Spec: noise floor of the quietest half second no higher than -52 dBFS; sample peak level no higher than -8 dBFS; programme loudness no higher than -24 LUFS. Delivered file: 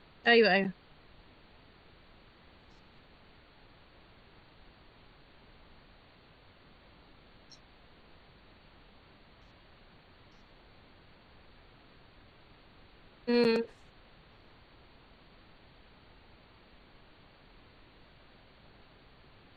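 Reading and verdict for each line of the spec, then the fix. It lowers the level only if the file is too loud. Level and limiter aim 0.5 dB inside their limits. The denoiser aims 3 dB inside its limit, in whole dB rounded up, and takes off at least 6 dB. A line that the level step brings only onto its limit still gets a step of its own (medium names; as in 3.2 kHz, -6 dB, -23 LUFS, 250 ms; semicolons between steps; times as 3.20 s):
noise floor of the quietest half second -59 dBFS: pass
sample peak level -12.5 dBFS: pass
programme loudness -27.5 LUFS: pass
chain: none needed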